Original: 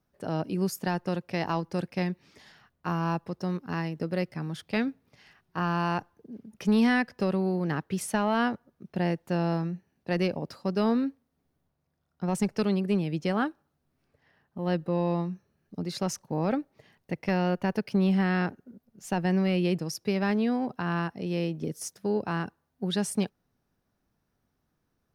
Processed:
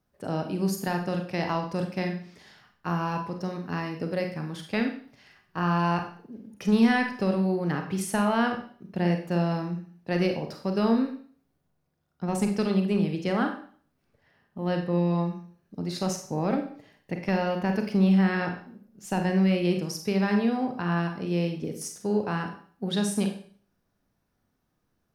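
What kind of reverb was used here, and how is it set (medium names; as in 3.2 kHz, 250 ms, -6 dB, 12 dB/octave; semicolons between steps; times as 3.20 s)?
Schroeder reverb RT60 0.48 s, combs from 31 ms, DRR 4 dB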